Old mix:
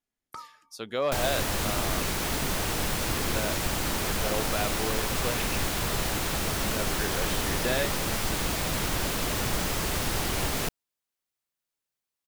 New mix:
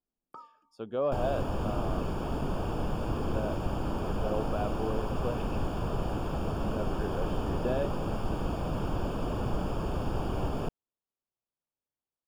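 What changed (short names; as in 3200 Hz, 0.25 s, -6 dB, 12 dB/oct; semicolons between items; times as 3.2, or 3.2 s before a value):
first sound: add HPF 220 Hz 12 dB/oct; master: add running mean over 22 samples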